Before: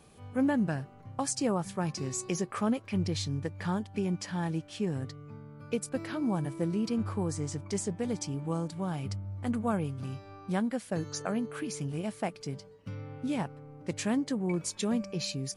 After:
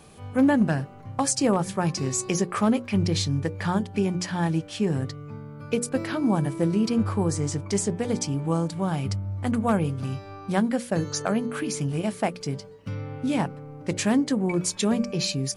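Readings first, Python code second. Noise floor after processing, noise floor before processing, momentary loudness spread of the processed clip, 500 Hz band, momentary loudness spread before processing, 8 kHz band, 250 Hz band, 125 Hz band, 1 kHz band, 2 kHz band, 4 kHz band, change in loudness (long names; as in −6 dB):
−44 dBFS, −53 dBFS, 9 LU, +7.5 dB, 9 LU, +8.0 dB, +7.0 dB, +7.5 dB, +8.0 dB, +8.0 dB, +8.0 dB, +7.5 dB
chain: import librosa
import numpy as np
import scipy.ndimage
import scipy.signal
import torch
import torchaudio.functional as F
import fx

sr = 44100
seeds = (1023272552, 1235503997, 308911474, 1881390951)

y = fx.hum_notches(x, sr, base_hz=60, count=9)
y = np.clip(10.0 ** (21.0 / 20.0) * y, -1.0, 1.0) / 10.0 ** (21.0 / 20.0)
y = F.gain(torch.from_numpy(y), 8.0).numpy()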